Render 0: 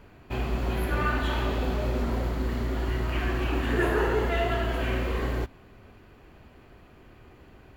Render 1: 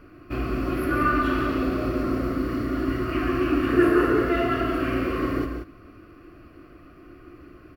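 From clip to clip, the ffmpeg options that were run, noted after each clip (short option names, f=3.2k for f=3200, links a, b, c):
-filter_complex "[0:a]superequalizer=6b=3.55:9b=0.316:10b=2.24:13b=0.447:15b=0.398,asplit=2[a][b];[b]aecho=0:1:142.9|180.8:0.355|0.398[c];[a][c]amix=inputs=2:normalize=0"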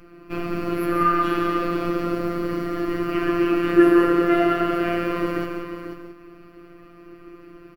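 -af "aecho=1:1:490:0.355,afftfilt=real='hypot(re,im)*cos(PI*b)':imag='0':win_size=1024:overlap=0.75,volume=5dB"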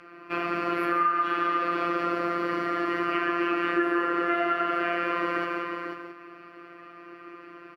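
-af "bandpass=f=1.5k:t=q:w=0.79:csg=0,acompressor=threshold=-29dB:ratio=6,volume=7dB"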